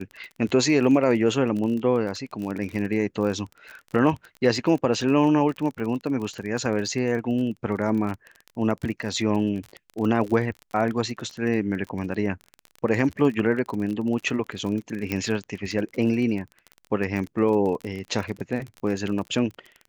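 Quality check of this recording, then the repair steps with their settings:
crackle 30/s -30 dBFS
15.12 pop -12 dBFS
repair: de-click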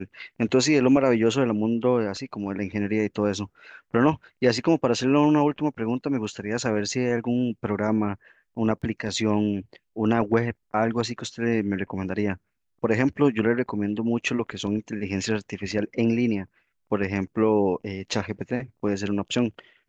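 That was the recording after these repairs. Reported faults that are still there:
none

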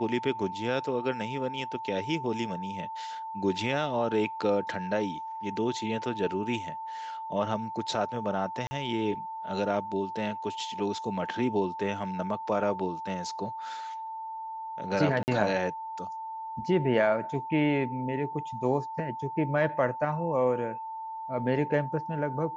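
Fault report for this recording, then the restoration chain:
tone 890 Hz -35 dBFS
8.67–8.71 gap 40 ms
15.23–15.28 gap 49 ms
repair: notch 890 Hz, Q 30; interpolate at 8.67, 40 ms; interpolate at 15.23, 49 ms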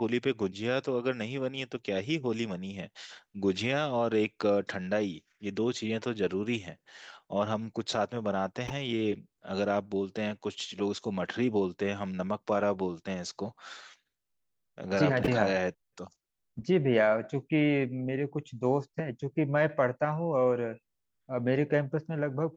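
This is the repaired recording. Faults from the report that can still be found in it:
none

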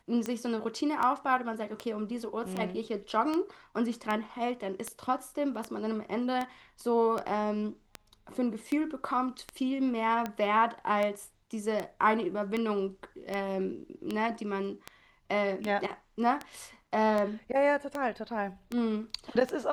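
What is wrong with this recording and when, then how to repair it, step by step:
tick 78 rpm -19 dBFS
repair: de-click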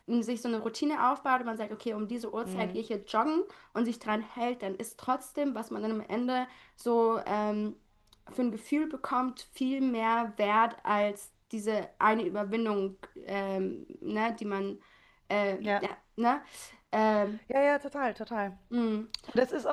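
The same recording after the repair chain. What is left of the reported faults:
none

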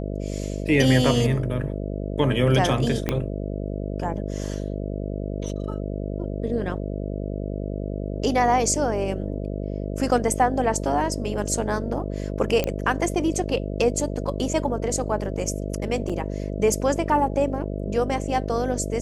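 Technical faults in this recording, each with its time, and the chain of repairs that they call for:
buzz 50 Hz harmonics 13 -29 dBFS
3.09 pop -9 dBFS
12.64 pop -10 dBFS
16.09–16.1 gap 6.3 ms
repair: de-click; de-hum 50 Hz, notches 13; interpolate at 16.09, 6.3 ms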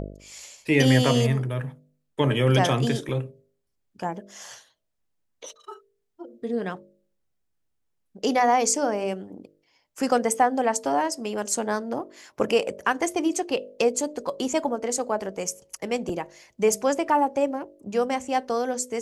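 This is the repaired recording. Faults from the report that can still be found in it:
3.09 pop

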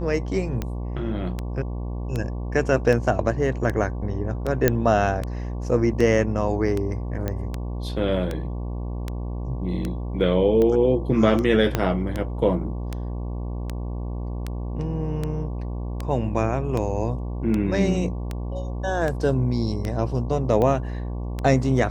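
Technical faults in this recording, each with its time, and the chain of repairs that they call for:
buzz 60 Hz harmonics 19 -29 dBFS
tick 78 rpm -14 dBFS
4.68 pop -4 dBFS
7.28 pop -13 dBFS
11.75 pop -7 dBFS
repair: de-click; de-hum 60 Hz, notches 19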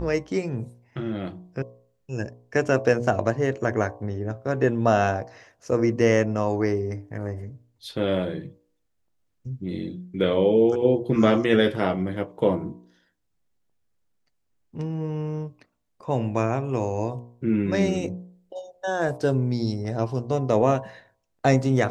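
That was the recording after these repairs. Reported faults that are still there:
11.75 pop

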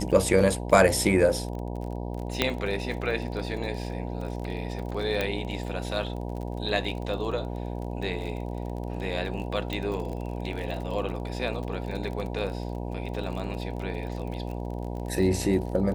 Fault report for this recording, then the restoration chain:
buzz 60 Hz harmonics 16 -33 dBFS
crackle 36/s -34 dBFS
2.42 pop -7 dBFS
5.21 pop -13 dBFS
9.73 pop -18 dBFS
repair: de-click; de-hum 60 Hz, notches 16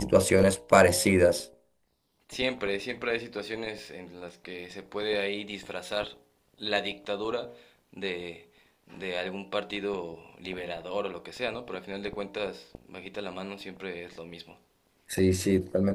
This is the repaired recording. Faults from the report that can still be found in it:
5.21 pop
9.73 pop

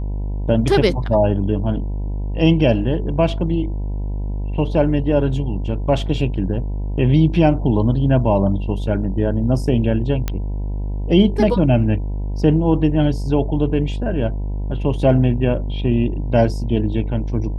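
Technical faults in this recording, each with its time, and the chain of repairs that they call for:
buzz 50 Hz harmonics 20 -23 dBFS
10.28 pop -8 dBFS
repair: de-click; de-hum 50 Hz, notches 20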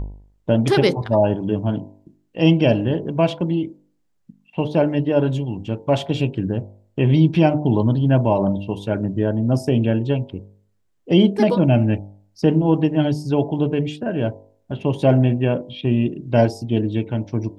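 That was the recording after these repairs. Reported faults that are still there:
none

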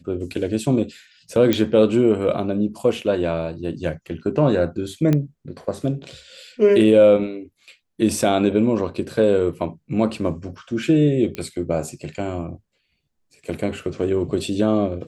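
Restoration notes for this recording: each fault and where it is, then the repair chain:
1.53 pop -6 dBFS
5.13 pop -9 dBFS
11.35 pop -14 dBFS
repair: de-click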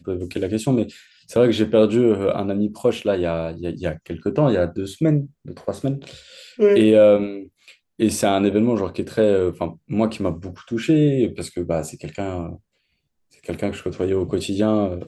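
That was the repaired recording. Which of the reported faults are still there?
none

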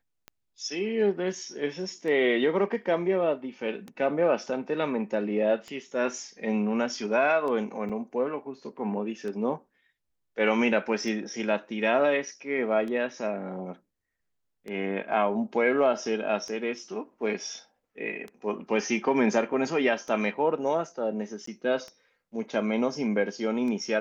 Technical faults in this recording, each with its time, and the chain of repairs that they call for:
tick 33 1/3 rpm -25 dBFS
7.89–7.9 gap 5.9 ms
21.46–21.47 gap 14 ms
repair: de-click; interpolate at 7.89, 5.9 ms; interpolate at 21.46, 14 ms

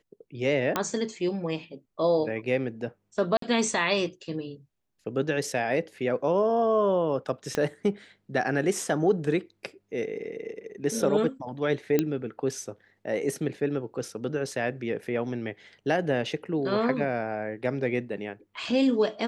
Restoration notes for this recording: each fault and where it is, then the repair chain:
0.76 pop -10 dBFS
3.37–3.42 gap 53 ms
7.55 pop -14 dBFS
11.99 pop -10 dBFS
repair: de-click; interpolate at 3.37, 53 ms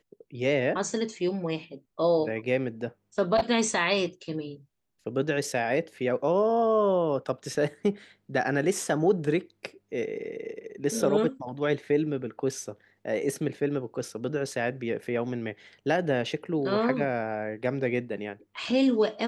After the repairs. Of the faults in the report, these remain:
7.55 pop

